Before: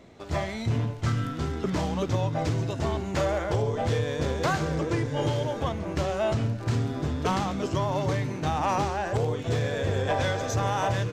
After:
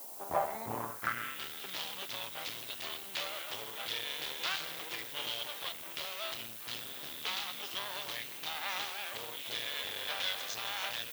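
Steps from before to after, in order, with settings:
half-wave rectification
band-pass filter sweep 820 Hz → 3,400 Hz, 0:00.70–0:01.50
background noise violet −55 dBFS
level +8 dB

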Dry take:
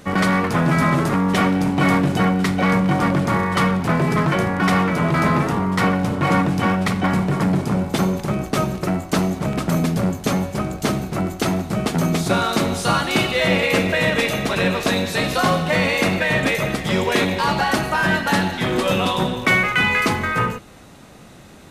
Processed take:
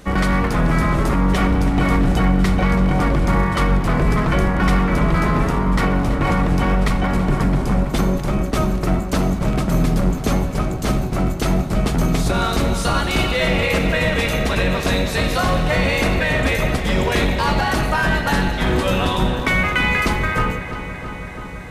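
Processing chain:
sub-octave generator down 2 octaves, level +2 dB
brickwall limiter −9 dBFS, peak gain reduction 5 dB
feedback echo with a low-pass in the loop 331 ms, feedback 81%, low-pass 4,400 Hz, level −12 dB

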